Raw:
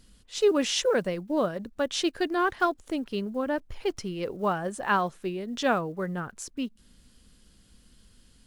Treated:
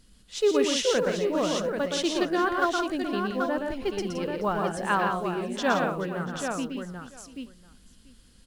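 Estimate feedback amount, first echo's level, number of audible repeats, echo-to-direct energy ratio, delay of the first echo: no regular repeats, -4.5 dB, 7, -1.0 dB, 119 ms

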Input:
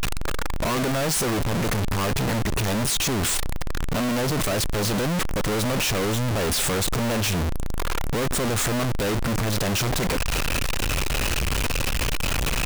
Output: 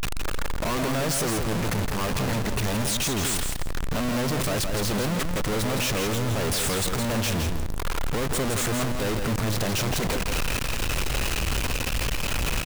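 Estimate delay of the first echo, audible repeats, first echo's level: 165 ms, 2, -6.0 dB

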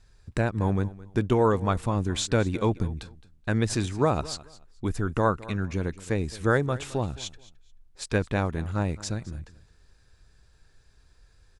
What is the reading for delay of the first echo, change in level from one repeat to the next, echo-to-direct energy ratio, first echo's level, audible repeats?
216 ms, -13.0 dB, -19.0 dB, -19.0 dB, 2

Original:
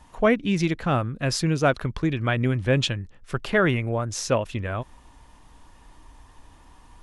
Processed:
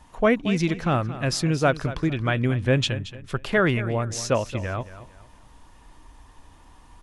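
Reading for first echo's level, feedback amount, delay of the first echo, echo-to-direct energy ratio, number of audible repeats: -14.5 dB, 32%, 226 ms, -14.0 dB, 3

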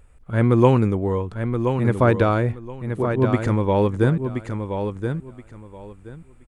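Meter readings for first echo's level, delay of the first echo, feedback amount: -7.0 dB, 1025 ms, 20%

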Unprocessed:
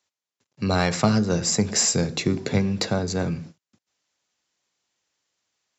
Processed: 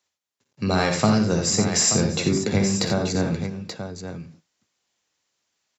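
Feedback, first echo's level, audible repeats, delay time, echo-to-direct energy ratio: no regular repeats, -12.5 dB, 4, 47 ms, -3.5 dB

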